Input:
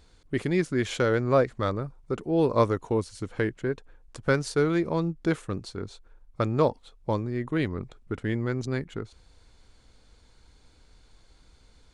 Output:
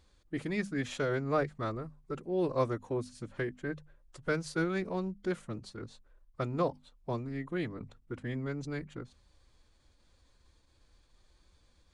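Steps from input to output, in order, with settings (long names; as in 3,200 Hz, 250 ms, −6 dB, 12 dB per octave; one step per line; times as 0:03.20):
phase-vocoder pitch shift with formants kept +2 semitones
mains-hum notches 50/100/150/200/250 Hz
level −7.5 dB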